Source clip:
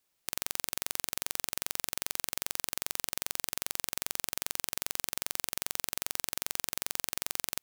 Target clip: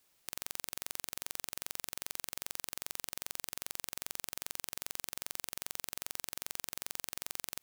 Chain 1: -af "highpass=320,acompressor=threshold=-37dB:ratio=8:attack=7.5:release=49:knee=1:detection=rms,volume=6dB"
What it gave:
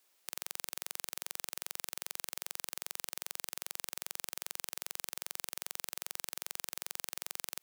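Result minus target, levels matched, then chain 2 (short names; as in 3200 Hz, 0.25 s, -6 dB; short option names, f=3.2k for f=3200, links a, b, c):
250 Hz band -4.5 dB
-af "acompressor=threshold=-37dB:ratio=8:attack=7.5:release=49:knee=1:detection=rms,volume=6dB"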